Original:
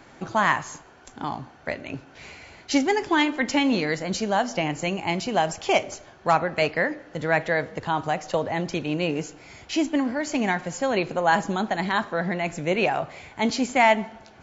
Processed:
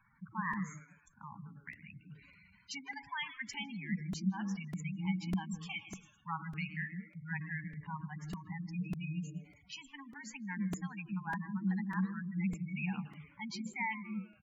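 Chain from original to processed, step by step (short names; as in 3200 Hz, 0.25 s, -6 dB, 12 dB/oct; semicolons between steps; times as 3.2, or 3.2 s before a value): elliptic band-stop 190–980 Hz, stop band 70 dB; bell 320 Hz +4.5 dB 0.99 oct; frequency-shifting echo 0.108 s, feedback 50%, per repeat +140 Hz, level -13 dB; dynamic EQ 1200 Hz, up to -4 dB, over -38 dBFS, Q 1.5; resonator 280 Hz, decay 0.94 s, mix 60%; in parallel at -7 dB: sample gate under -39.5 dBFS; on the sum: spectral gate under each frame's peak -10 dB strong; on a send at -19 dB: reverb RT60 0.15 s, pre-delay 0.151 s; on the sum: crackling interface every 0.60 s, samples 128, repeat, from 0.53; gain -7.5 dB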